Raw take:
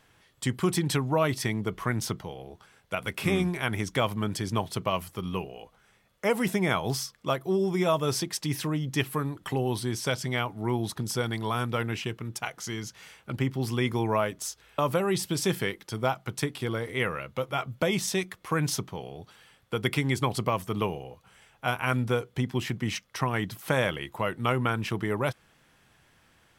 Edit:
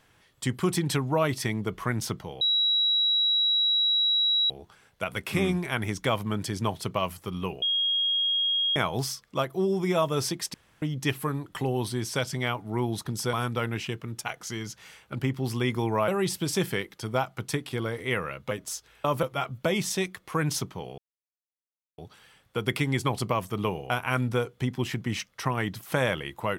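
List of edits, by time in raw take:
2.41 add tone 3880 Hz -20.5 dBFS 2.09 s
5.53–6.67 bleep 3270 Hz -22.5 dBFS
8.45–8.73 room tone
11.24–11.5 cut
14.25–14.97 move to 17.4
19.15 insert silence 1.00 s
21.07–21.66 cut

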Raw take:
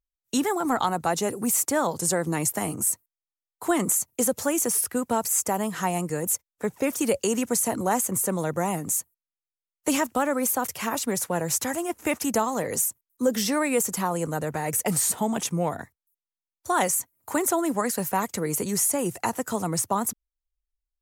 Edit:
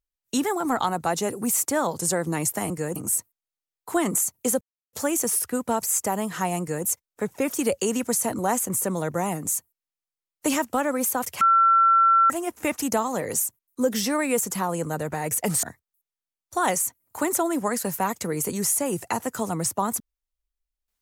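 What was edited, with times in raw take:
4.35 insert silence 0.32 s
6.02–6.28 copy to 2.7
10.83–11.72 bleep 1350 Hz -14 dBFS
15.05–15.76 cut

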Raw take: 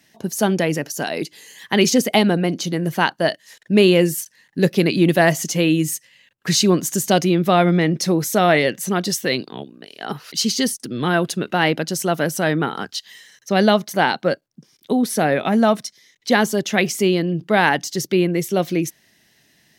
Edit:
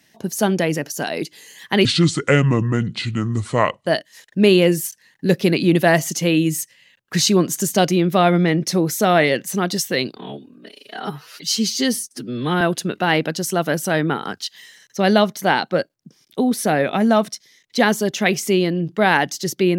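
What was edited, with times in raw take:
1.85–3.2 speed 67%
9.5–11.13 stretch 1.5×

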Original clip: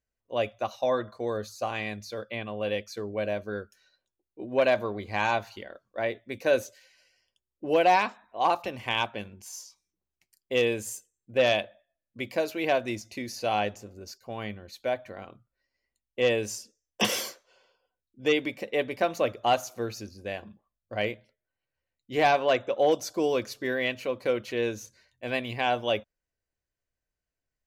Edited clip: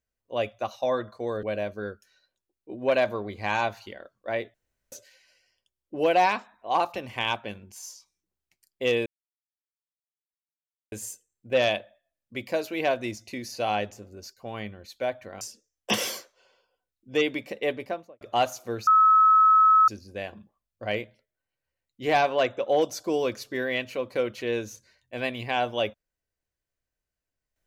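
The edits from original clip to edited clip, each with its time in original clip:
1.43–3.13 cut
6.24–6.62 room tone
10.76 insert silence 1.86 s
15.25–16.52 cut
18.77–19.32 studio fade out
19.98 add tone 1290 Hz -14 dBFS 1.01 s

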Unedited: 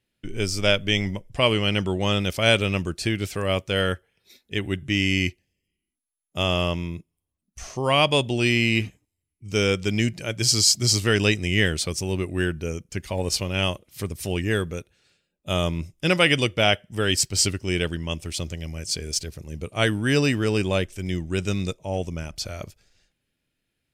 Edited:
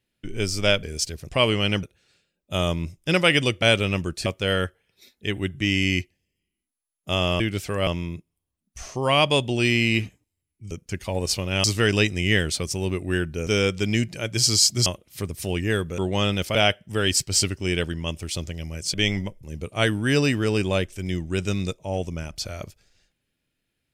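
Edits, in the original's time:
0.83–1.32 swap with 18.97–19.43
1.86–2.43 swap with 14.79–16.58
3.07–3.54 move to 6.68
9.52–10.91 swap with 12.74–13.67

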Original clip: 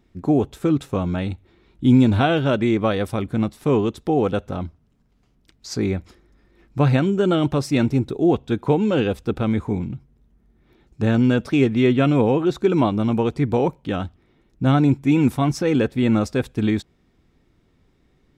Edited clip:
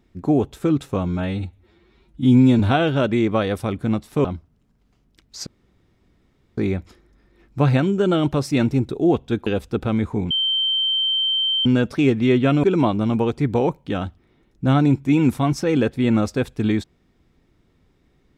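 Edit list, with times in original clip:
1.08–2.09 stretch 1.5×
3.74–4.55 cut
5.77 insert room tone 1.11 s
8.66–9.01 cut
9.85–11.2 bleep 3120 Hz -17.5 dBFS
12.18–12.62 cut

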